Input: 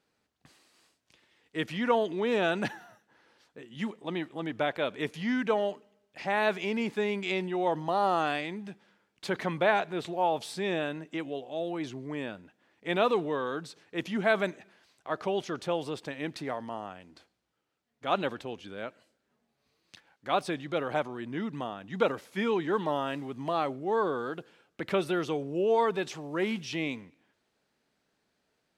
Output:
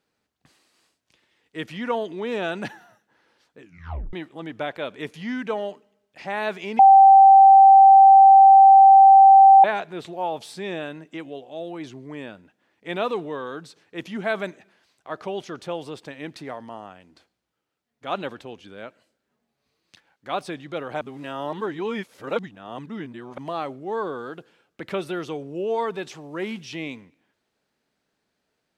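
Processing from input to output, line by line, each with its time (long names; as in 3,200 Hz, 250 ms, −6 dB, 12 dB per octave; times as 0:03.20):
0:03.60: tape stop 0.53 s
0:06.79–0:09.64: beep over 779 Hz −7 dBFS
0:21.01–0:23.38: reverse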